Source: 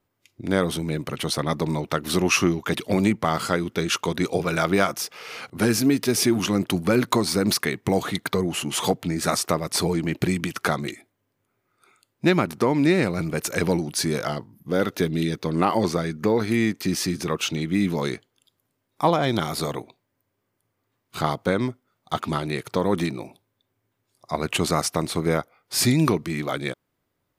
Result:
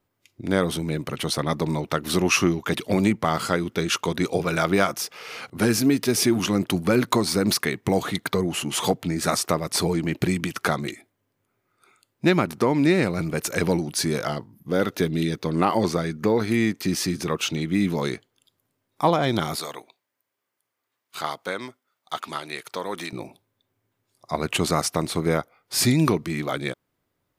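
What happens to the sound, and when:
19.56–23.13 s: high-pass 1.1 kHz 6 dB/octave

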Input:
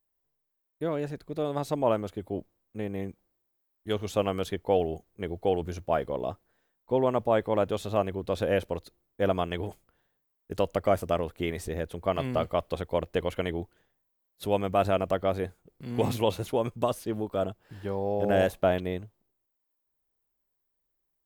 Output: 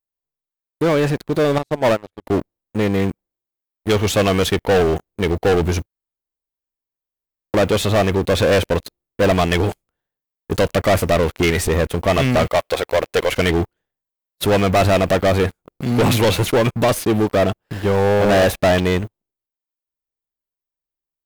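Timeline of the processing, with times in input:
1.58–2.27 s: upward expansion 2.5:1, over -34 dBFS
5.86–7.54 s: room tone
12.48–13.32 s: tone controls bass -15 dB, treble +2 dB
whole clip: dynamic bell 2.2 kHz, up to +6 dB, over -49 dBFS, Q 1.4; waveshaping leveller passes 5

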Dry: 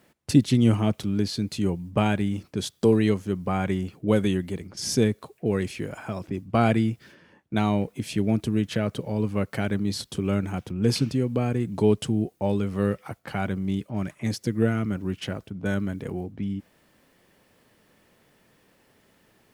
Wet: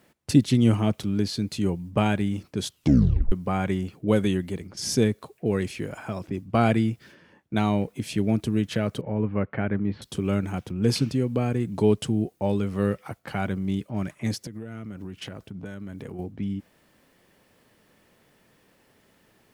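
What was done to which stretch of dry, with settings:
2.67 s: tape stop 0.65 s
9.01–10.02 s: low-pass 2.3 kHz 24 dB/octave
14.42–16.19 s: compression 12:1, threshold -32 dBFS

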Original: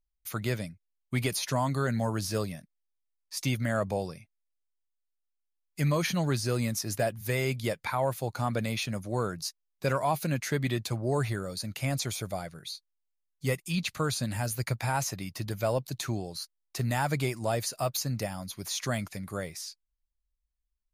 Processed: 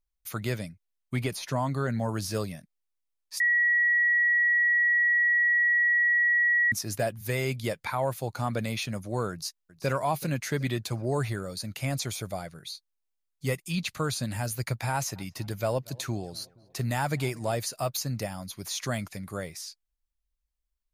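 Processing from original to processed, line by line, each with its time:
1.16–2.09 s: treble shelf 3.1 kHz -7 dB
3.40–6.72 s: bleep 1.92 kHz -20 dBFS
9.31–9.91 s: echo throw 380 ms, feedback 45%, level -16 dB
14.92–17.56 s: filtered feedback delay 235 ms, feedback 60%, level -24 dB

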